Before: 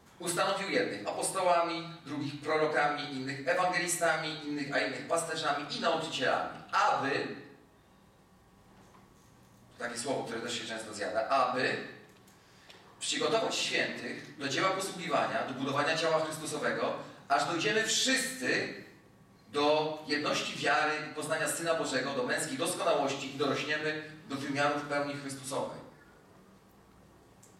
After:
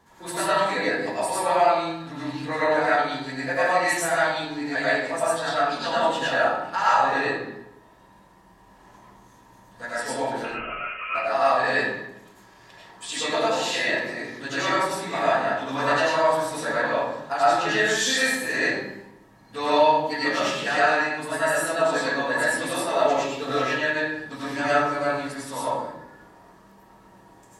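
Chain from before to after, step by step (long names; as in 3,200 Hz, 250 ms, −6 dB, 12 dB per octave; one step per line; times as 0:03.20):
hollow resonant body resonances 940/1,700 Hz, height 14 dB, ringing for 45 ms
0:10.44–0:11.15: voice inversion scrambler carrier 3,000 Hz
convolution reverb RT60 0.65 s, pre-delay 66 ms, DRR −7 dB
level −2 dB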